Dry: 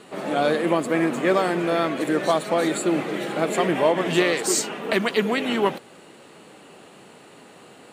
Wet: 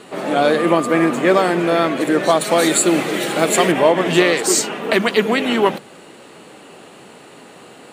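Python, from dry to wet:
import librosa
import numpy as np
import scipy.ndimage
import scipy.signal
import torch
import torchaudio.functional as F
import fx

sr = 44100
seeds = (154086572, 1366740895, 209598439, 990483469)

y = fx.dmg_tone(x, sr, hz=1200.0, level_db=-31.0, at=(0.57, 1.11), fade=0.02)
y = fx.high_shelf(y, sr, hz=3500.0, db=11.0, at=(2.41, 3.72))
y = fx.hum_notches(y, sr, base_hz=50, count=4)
y = F.gain(torch.from_numpy(y), 6.0).numpy()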